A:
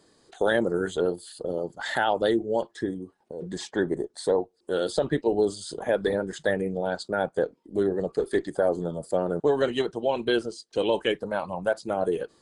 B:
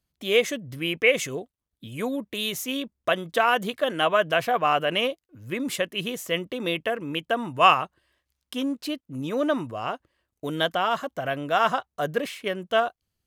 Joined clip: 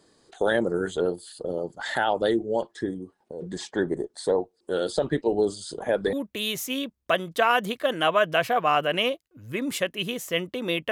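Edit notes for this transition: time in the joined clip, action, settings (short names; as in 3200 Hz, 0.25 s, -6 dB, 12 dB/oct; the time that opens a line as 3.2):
A
6.13 switch to B from 2.11 s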